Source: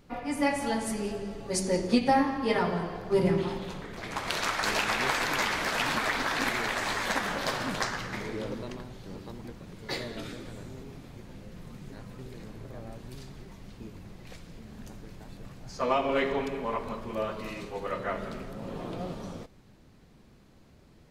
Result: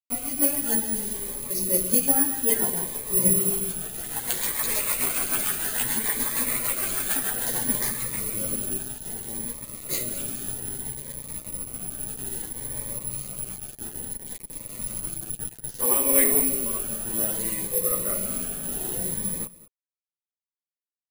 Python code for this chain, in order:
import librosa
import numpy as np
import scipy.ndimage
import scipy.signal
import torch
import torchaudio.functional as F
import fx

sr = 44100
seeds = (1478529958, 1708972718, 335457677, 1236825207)

p1 = fx.rider(x, sr, range_db=4, speed_s=2.0)
p2 = x + F.gain(torch.from_numpy(p1), -2.5).numpy()
p3 = fx.rotary_switch(p2, sr, hz=6.7, then_hz=0.8, switch_at_s=9.81)
p4 = fx.quant_dither(p3, sr, seeds[0], bits=6, dither='none')
p5 = fx.chorus_voices(p4, sr, voices=6, hz=0.12, base_ms=12, depth_ms=4.3, mix_pct=50)
p6 = (np.kron(scipy.signal.resample_poly(p5, 1, 4), np.eye(4)[0]) * 4)[:len(p5)]
p7 = p6 + fx.echo_single(p6, sr, ms=204, db=-19.0, dry=0)
p8 = fx.notch_cascade(p7, sr, direction='rising', hz=0.61)
y = F.gain(torch.from_numpy(p8), -1.0).numpy()